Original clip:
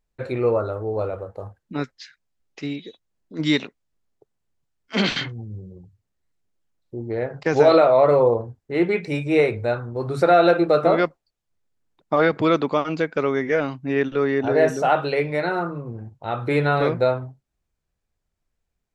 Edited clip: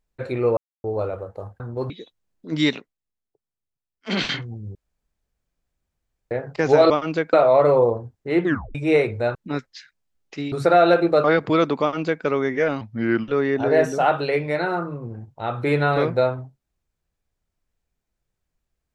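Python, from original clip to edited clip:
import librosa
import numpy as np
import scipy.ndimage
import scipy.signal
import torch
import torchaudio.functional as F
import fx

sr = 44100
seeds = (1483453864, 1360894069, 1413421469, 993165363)

y = fx.edit(x, sr, fx.silence(start_s=0.57, length_s=0.27),
    fx.swap(start_s=1.6, length_s=1.17, other_s=9.79, other_length_s=0.3),
    fx.fade_down_up(start_s=3.61, length_s=1.5, db=-13.0, fade_s=0.22),
    fx.room_tone_fill(start_s=5.62, length_s=1.56),
    fx.tape_stop(start_s=8.87, length_s=0.32),
    fx.cut(start_s=10.81, length_s=1.35),
    fx.duplicate(start_s=12.73, length_s=0.43, to_s=7.77),
    fx.speed_span(start_s=13.73, length_s=0.39, speed=0.83), tone=tone)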